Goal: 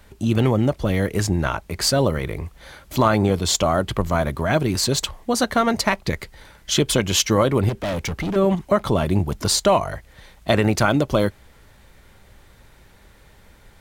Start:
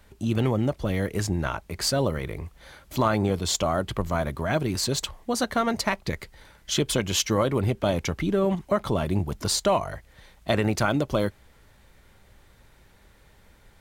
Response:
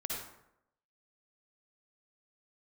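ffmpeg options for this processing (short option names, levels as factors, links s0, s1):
-filter_complex "[0:a]asettb=1/sr,asplit=3[s0][s1][s2];[s0]atrim=end=7.694[s3];[s1]atrim=start=7.69:end=8.36,asetpts=PTS-STARTPTS,afade=t=in:d=0.004:c=qsin,afade=t=out:st=0.666:d=0.004:c=qsin,asoftclip=type=hard:threshold=0.0422[s4];[s2]atrim=start=8.356[s5];[s3][s4]acrossfade=d=0.004:c1=hsin:c2=qsin[s6];[s6][s5]acrossfade=d=0.004:c1=qsin:c2=hsin,volume=1.88"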